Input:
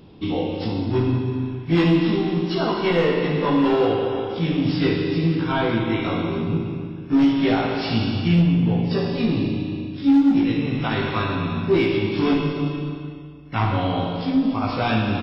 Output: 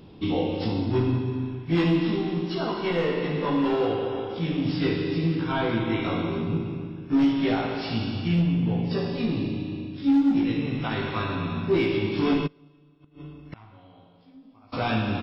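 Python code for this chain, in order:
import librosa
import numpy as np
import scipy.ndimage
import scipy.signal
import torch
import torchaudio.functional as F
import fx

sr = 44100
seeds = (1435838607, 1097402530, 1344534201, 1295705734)

y = fx.rider(x, sr, range_db=5, speed_s=2.0)
y = fx.gate_flip(y, sr, shuts_db=-21.0, range_db=-27, at=(12.46, 14.72), fade=0.02)
y = F.gain(torch.from_numpy(y), -5.0).numpy()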